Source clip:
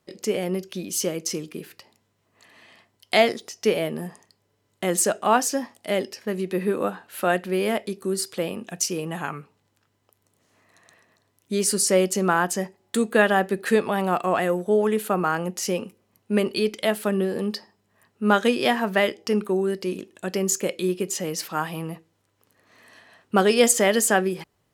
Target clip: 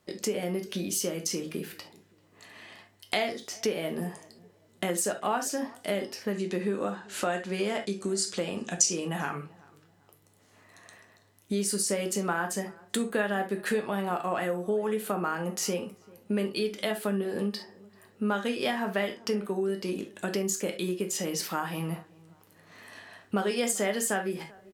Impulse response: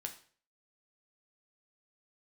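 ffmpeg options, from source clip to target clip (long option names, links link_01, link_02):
-filter_complex "[1:a]atrim=start_sample=2205,atrim=end_sample=3528[link_01];[0:a][link_01]afir=irnorm=-1:irlink=0,acompressor=threshold=-35dB:ratio=3,asettb=1/sr,asplit=3[link_02][link_03][link_04];[link_02]atrim=end=6.334[link_05];[link_03]atrim=start=6.33:end=9.08,asetpts=PTS-STARTPTS,afade=type=in:duration=0.004:curve=qsin,afade=type=out:start_time=2.746:duration=0.004:curve=qsin,lowpass=frequency=7000:width_type=q:width=2.7[link_06];[link_04]atrim=start=9.076[link_07];[link_05][link_06]acrossfade=duration=0.004:curve1=hsin:curve2=qsin[link_08];[link_08][link_07]acrossfade=duration=0.004:curve1=qsin:curve2=hsin,asplit=2[link_09][link_10];[link_10]adelay=389,lowpass=frequency=1500:poles=1,volume=-22.5dB,asplit=2[link_11][link_12];[link_12]adelay=389,lowpass=frequency=1500:poles=1,volume=0.37,asplit=2[link_13][link_14];[link_14]adelay=389,lowpass=frequency=1500:poles=1,volume=0.37[link_15];[link_09][link_11][link_13][link_15]amix=inputs=4:normalize=0,volume=5.5dB"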